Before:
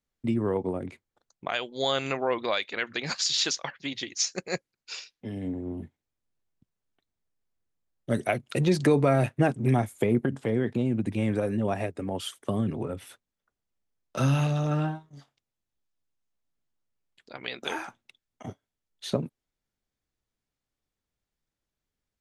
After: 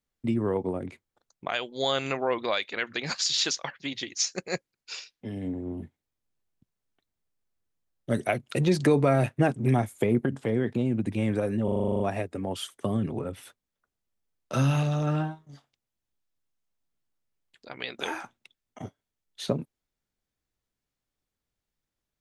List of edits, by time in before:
11.64 stutter 0.04 s, 10 plays

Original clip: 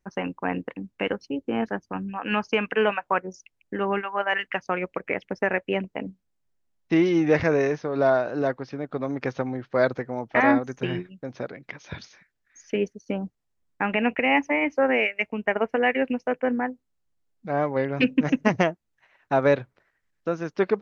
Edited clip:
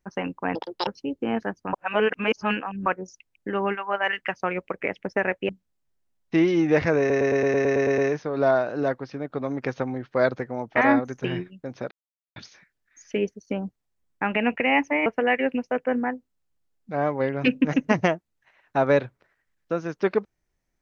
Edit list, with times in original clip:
0.55–1.13 speed 181%
1.99–3.12 reverse
5.75–6.07 cut
7.57 stutter 0.11 s, 10 plays
11.5–11.95 mute
14.65–15.62 cut

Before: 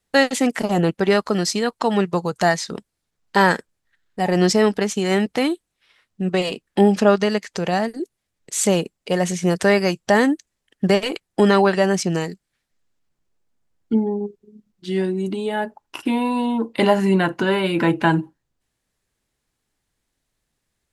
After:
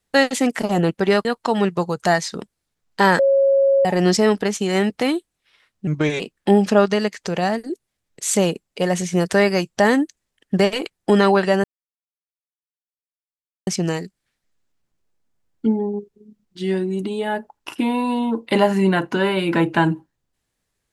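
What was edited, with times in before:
1.25–1.61 cut
3.55–4.21 bleep 548 Hz -12 dBFS
6.23–6.5 speed 82%
11.94 insert silence 2.03 s

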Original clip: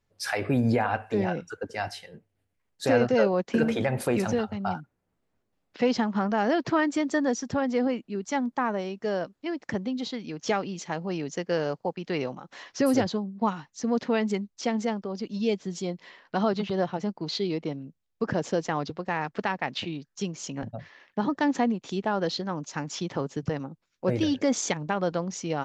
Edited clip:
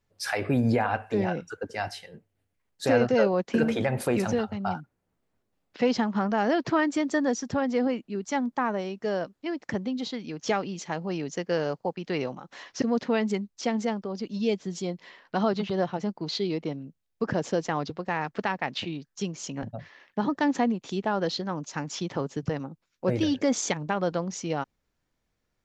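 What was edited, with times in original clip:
12.82–13.82 cut

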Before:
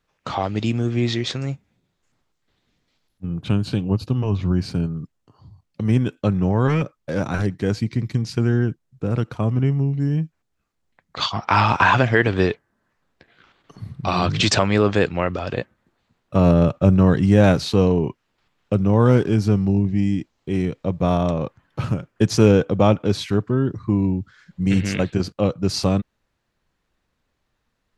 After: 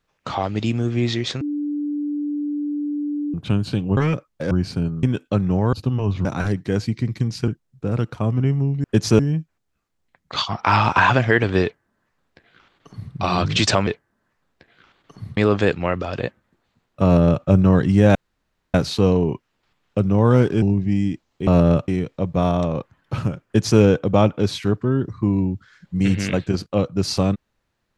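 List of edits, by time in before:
1.41–3.34 bleep 293 Hz -21.5 dBFS
3.97–4.49 swap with 6.65–7.19
5.01–5.95 cut
8.42–8.67 cut
12.47–13.97 copy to 14.71
16.38–16.79 copy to 20.54
17.49 insert room tone 0.59 s
19.37–19.69 cut
22.11–22.46 copy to 10.03

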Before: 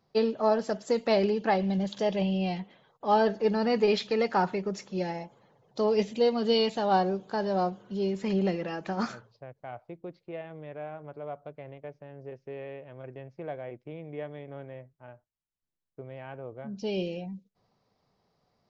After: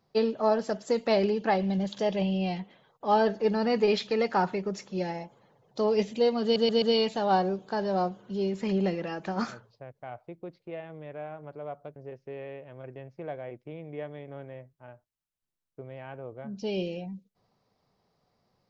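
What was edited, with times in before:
6.43 stutter 0.13 s, 4 plays
11.57–12.16 cut

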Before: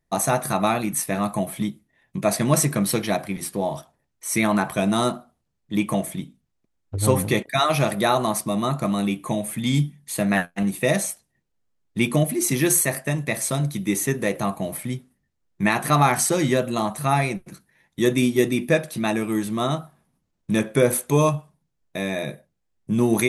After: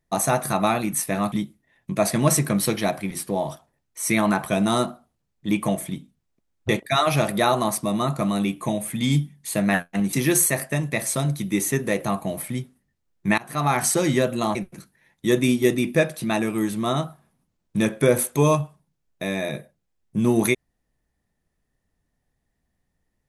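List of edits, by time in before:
1.32–1.58 cut
6.95–7.32 cut
10.76–12.48 cut
15.73–16.23 fade in, from -23.5 dB
16.9–17.29 cut

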